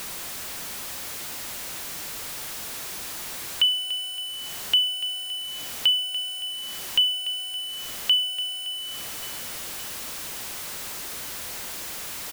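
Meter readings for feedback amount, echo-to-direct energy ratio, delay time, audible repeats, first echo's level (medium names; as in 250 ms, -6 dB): 50%, -17.0 dB, 566 ms, 3, -18.0 dB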